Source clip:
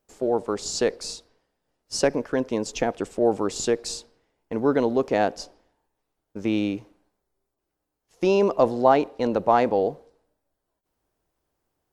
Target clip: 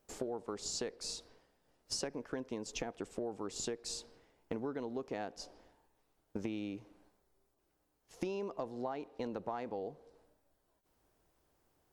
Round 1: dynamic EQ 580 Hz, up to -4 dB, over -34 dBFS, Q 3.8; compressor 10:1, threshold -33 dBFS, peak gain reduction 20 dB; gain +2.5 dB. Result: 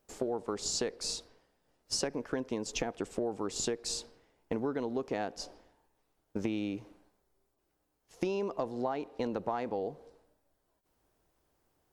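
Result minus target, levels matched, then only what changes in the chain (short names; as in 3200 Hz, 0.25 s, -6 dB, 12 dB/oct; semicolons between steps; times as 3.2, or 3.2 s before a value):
compressor: peak gain reduction -6 dB
change: compressor 10:1, threshold -39.5 dBFS, peak gain reduction 26 dB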